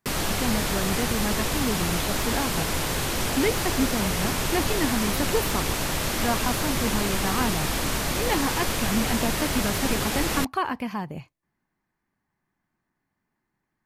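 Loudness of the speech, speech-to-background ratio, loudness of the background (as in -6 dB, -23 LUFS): -29.5 LUFS, -3.5 dB, -26.0 LUFS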